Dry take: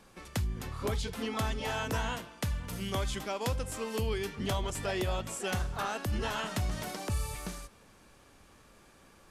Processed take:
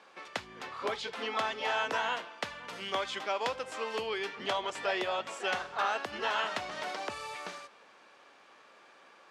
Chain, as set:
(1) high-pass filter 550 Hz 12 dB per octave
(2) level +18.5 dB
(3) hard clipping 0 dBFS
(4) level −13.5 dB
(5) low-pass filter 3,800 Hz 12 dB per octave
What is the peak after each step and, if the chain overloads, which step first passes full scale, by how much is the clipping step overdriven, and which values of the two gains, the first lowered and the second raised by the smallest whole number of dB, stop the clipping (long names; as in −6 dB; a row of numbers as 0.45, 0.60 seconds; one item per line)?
−20.5, −2.0, −2.0, −15.5, −17.5 dBFS
no step passes full scale